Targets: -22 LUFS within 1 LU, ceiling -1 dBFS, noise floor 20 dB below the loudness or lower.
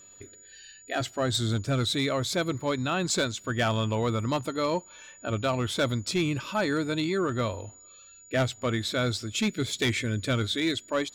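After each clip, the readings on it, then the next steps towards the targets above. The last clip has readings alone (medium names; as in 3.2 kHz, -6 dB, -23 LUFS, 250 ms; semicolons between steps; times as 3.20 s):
clipped samples 0.9%; clipping level -19.5 dBFS; steady tone 6.9 kHz; tone level -50 dBFS; loudness -28.0 LUFS; peak level -19.5 dBFS; loudness target -22.0 LUFS
-> clip repair -19.5 dBFS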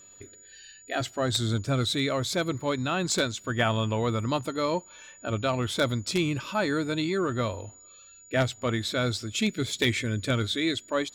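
clipped samples 0.0%; steady tone 6.9 kHz; tone level -50 dBFS
-> band-stop 6.9 kHz, Q 30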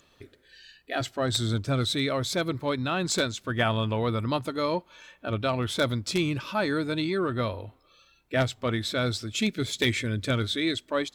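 steady tone not found; loudness -28.0 LUFS; peak level -10.5 dBFS; loudness target -22.0 LUFS
-> trim +6 dB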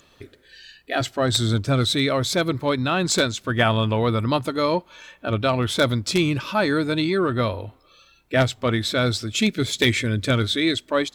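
loudness -22.0 LUFS; peak level -4.5 dBFS; noise floor -57 dBFS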